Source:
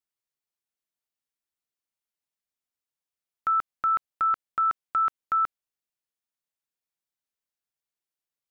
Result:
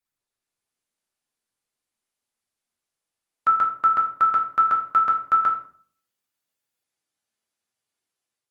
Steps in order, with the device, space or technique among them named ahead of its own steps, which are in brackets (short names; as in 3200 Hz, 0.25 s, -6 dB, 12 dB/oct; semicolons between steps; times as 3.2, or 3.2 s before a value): far-field microphone of a smart speaker (reverb RT60 0.50 s, pre-delay 5 ms, DRR -1 dB; HPF 88 Hz 12 dB/oct; AGC gain up to 5 dB; Opus 32 kbps 48000 Hz)